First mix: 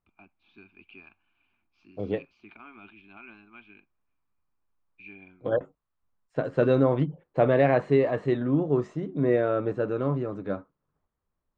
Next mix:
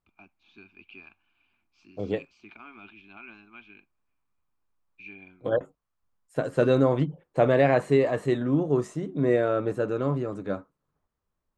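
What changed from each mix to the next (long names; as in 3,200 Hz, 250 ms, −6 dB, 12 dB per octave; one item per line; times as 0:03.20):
master: remove high-frequency loss of the air 180 metres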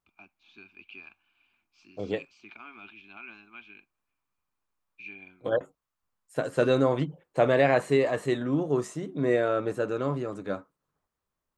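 master: add spectral tilt +1.5 dB per octave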